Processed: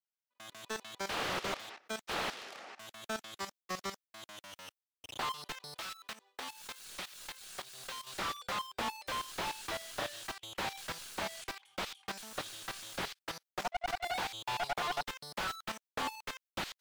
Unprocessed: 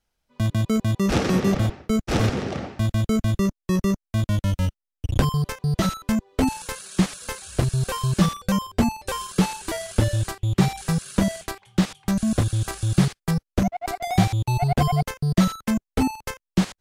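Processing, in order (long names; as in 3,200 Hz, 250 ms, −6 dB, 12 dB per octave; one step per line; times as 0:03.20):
phase distortion by the signal itself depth 0.69 ms
high-pass filter 920 Hz 12 dB per octave
output level in coarse steps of 17 dB
dynamic equaliser 3,600 Hz, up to +7 dB, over −53 dBFS, Q 1.1
0:05.68–0:08.07: downward compressor 6 to 1, threshold −40 dBFS, peak gain reduction 11.5 dB
high-shelf EQ 11,000 Hz +8 dB
noise gate with hold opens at −53 dBFS
slew-rate limiting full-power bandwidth 36 Hz
level +1.5 dB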